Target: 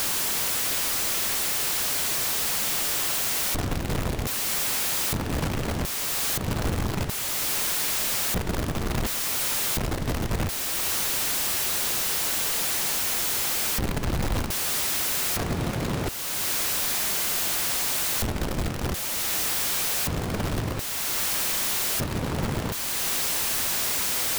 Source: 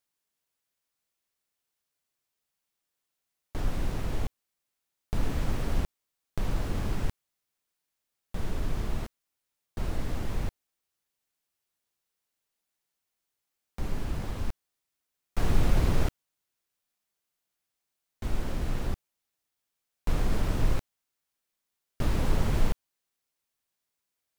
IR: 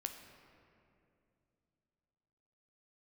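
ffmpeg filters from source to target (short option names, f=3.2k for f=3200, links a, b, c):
-af "aeval=exprs='val(0)+0.5*0.0447*sgn(val(0))':c=same,afftfilt=real='re*lt(hypot(re,im),0.631)':imag='im*lt(hypot(re,im),0.631)':win_size=1024:overlap=0.75,acontrast=36,alimiter=limit=-21dB:level=0:latency=1:release=417,volume=2.5dB"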